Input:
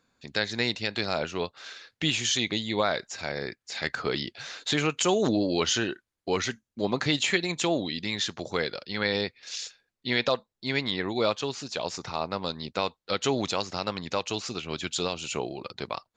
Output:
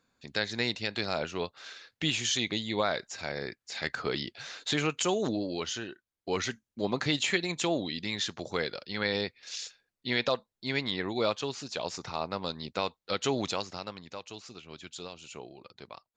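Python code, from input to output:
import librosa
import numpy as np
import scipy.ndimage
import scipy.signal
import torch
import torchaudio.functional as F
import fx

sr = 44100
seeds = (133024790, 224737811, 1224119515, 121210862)

y = fx.gain(x, sr, db=fx.line((4.92, -3.0), (5.9, -11.0), (6.39, -3.0), (13.51, -3.0), (14.1, -13.0)))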